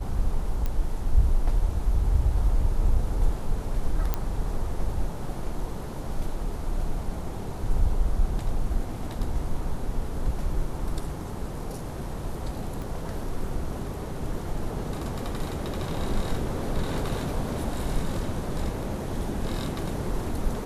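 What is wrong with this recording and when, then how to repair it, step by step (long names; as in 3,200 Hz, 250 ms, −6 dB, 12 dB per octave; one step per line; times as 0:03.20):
0:00.66: click −16 dBFS
0:04.14: click −12 dBFS
0:12.82: click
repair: click removal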